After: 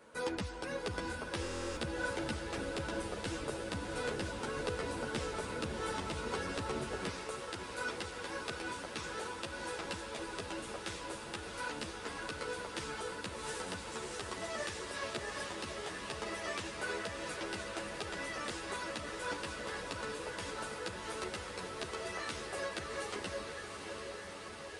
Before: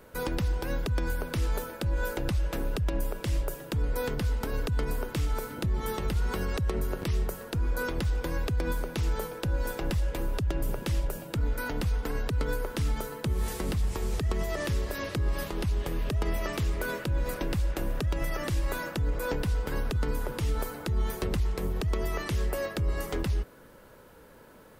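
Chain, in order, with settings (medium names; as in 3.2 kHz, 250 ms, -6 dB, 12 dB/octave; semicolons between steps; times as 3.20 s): echo that smears into a reverb 699 ms, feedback 78%, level -5.5 dB; resampled via 22.05 kHz; high-pass 320 Hz 6 dB/octave, from 7.09 s 810 Hz; buffer glitch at 1.41 s, samples 1024, times 14; three-phase chorus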